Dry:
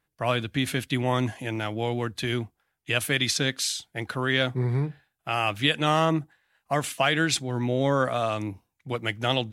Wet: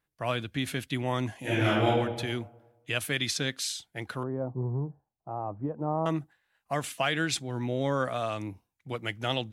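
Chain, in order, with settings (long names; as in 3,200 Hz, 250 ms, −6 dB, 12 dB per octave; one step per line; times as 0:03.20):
0:01.40–0:01.86: thrown reverb, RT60 1.2 s, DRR −10.5 dB
0:04.23–0:06.06: Chebyshev low-pass filter 990 Hz, order 4
level −5 dB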